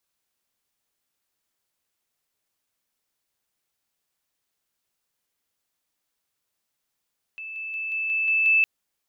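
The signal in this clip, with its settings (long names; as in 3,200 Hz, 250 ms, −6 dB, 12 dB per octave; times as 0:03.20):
level staircase 2,630 Hz −33.5 dBFS, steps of 3 dB, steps 7, 0.18 s 0.00 s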